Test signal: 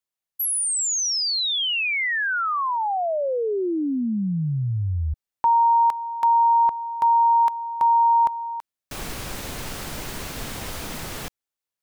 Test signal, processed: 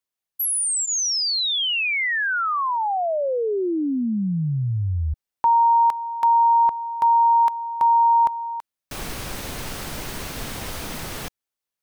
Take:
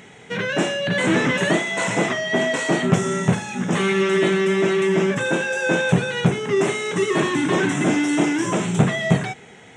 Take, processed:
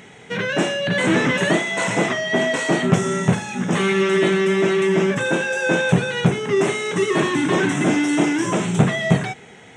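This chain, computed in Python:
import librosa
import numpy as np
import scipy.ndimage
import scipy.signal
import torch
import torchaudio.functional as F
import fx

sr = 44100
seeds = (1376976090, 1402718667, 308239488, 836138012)

y = fx.notch(x, sr, hz=7200.0, q=25.0)
y = y * 10.0 ** (1.0 / 20.0)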